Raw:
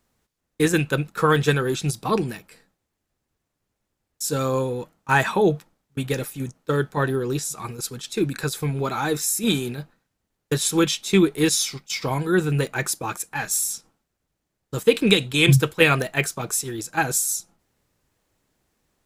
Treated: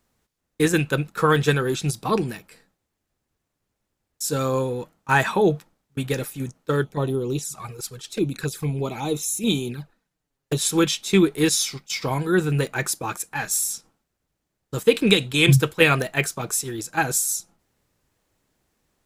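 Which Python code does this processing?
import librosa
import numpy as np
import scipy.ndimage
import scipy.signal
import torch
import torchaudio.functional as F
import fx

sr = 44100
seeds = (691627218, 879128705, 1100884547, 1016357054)

y = fx.env_flanger(x, sr, rest_ms=7.7, full_db=-21.5, at=(6.83, 10.57), fade=0.02)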